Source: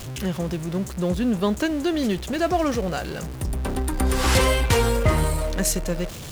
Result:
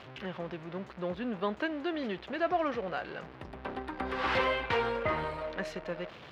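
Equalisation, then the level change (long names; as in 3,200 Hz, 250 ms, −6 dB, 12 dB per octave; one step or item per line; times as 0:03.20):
high-pass filter 1,100 Hz 6 dB per octave
high-frequency loss of the air 340 metres
high-shelf EQ 5,300 Hz −11 dB
0.0 dB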